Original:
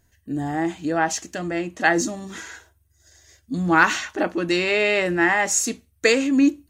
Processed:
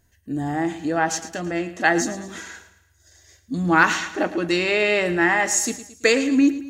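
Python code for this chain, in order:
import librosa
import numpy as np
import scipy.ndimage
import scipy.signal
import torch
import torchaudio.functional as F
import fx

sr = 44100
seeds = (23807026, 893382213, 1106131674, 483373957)

y = fx.echo_feedback(x, sr, ms=111, feedback_pct=46, wet_db=-14.0)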